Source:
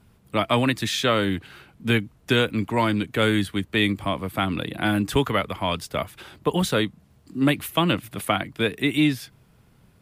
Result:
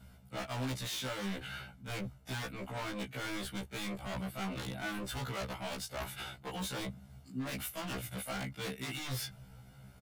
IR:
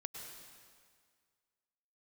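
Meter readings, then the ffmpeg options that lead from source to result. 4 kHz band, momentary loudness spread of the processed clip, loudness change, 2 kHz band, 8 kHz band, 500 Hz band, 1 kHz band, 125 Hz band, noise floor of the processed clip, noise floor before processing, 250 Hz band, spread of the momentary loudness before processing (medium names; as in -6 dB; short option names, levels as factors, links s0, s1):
-14.5 dB, 6 LU, -16.0 dB, -15.0 dB, -7.0 dB, -18.0 dB, -16.0 dB, -14.0 dB, -58 dBFS, -58 dBFS, -18.0 dB, 8 LU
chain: -af "asoftclip=type=hard:threshold=0.1,aecho=1:1:1.4:0.57,areverse,acompressor=threshold=0.0251:ratio=16,areverse,aeval=exprs='0.0224*(abs(mod(val(0)/0.0224+3,4)-2)-1)':c=same,afftfilt=real='re*1.73*eq(mod(b,3),0)':imag='im*1.73*eq(mod(b,3),0)':win_size=2048:overlap=0.75,volume=1.26"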